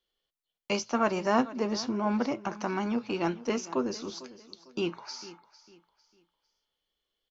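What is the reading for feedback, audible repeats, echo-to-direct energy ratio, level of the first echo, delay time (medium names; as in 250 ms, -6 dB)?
32%, 2, -17.0 dB, -17.5 dB, 451 ms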